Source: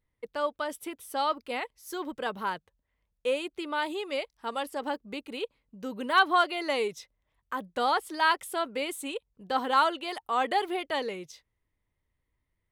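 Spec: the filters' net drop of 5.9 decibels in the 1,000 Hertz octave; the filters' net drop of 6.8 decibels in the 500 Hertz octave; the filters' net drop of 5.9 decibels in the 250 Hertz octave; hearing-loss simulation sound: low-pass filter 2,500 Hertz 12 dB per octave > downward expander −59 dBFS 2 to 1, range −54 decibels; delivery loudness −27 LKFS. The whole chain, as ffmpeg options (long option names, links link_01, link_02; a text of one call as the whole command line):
ffmpeg -i in.wav -af "lowpass=2500,equalizer=frequency=250:width_type=o:gain=-5,equalizer=frequency=500:width_type=o:gain=-5.5,equalizer=frequency=1000:width_type=o:gain=-5.5,agate=range=-54dB:threshold=-59dB:ratio=2,volume=8.5dB" out.wav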